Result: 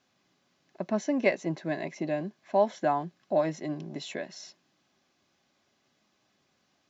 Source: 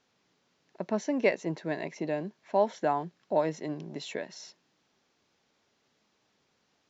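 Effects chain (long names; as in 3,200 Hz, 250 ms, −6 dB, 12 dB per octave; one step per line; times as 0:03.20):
notch comb filter 460 Hz
level +2 dB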